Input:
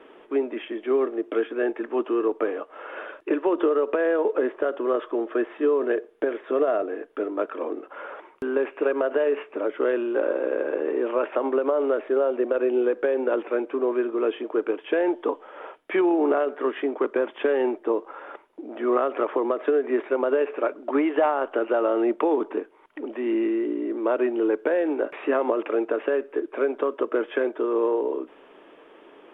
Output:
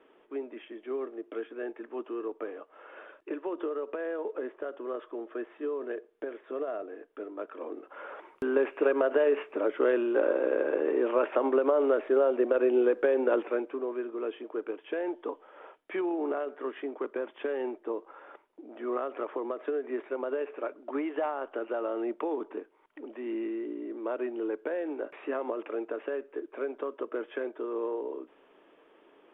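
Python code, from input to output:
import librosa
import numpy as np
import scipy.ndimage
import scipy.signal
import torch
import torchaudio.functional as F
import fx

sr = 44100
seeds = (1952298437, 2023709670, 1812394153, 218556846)

y = fx.gain(x, sr, db=fx.line((7.38, -12.0), (8.43, -2.0), (13.38, -2.0), (13.87, -10.0)))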